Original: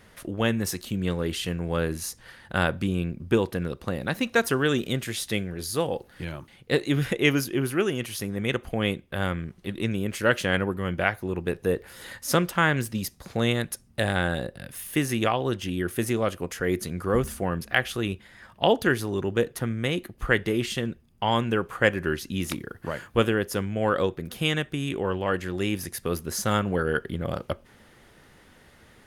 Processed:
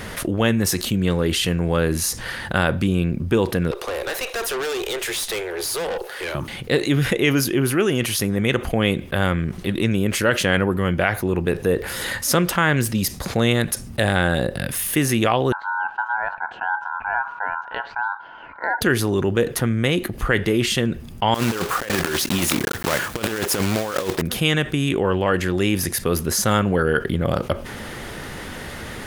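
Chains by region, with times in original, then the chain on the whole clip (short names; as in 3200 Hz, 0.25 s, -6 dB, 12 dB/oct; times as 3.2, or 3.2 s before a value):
3.71–6.35 steep high-pass 360 Hz 72 dB/oct + tube stage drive 36 dB, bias 0.45
15.52–18.81 band-pass 290 Hz, Q 2.9 + air absorption 200 m + ring modulator 1200 Hz
21.34–24.22 block floating point 3-bit + low shelf 190 Hz -8 dB + negative-ratio compressor -31 dBFS, ratio -0.5
whole clip: maximiser +9 dB; fast leveller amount 50%; gain -6 dB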